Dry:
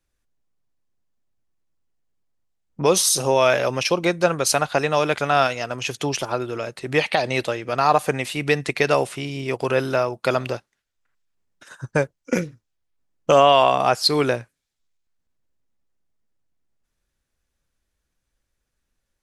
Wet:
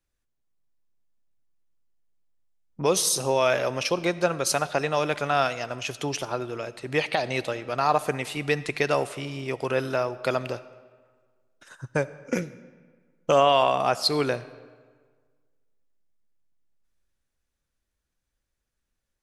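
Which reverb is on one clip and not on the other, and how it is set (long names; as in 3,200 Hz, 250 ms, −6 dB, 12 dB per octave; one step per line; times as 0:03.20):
comb and all-pass reverb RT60 1.6 s, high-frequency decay 0.7×, pre-delay 30 ms, DRR 16.5 dB
level −5 dB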